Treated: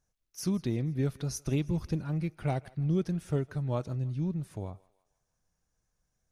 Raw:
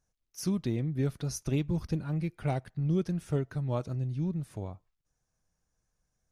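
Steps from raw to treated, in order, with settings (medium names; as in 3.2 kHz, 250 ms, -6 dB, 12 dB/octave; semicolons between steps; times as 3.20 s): thinning echo 161 ms, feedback 53%, high-pass 570 Hz, level -21 dB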